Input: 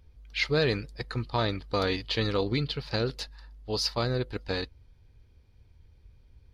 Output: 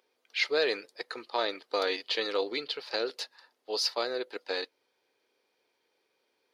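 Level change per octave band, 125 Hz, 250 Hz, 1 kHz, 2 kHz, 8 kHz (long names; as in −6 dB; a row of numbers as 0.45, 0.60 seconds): below −35 dB, −9.5 dB, −1.5 dB, 0.0 dB, 0.0 dB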